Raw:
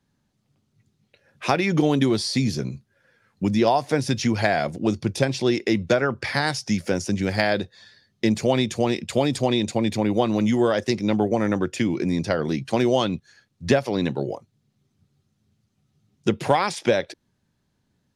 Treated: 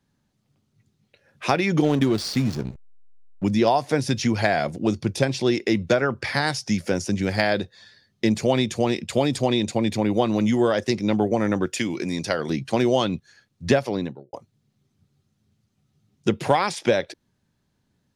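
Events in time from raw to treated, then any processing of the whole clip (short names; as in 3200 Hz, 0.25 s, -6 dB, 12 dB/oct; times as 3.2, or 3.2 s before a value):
1.84–3.44 backlash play -26 dBFS
11.66–12.5 tilt +2 dB/oct
13.81–14.33 studio fade out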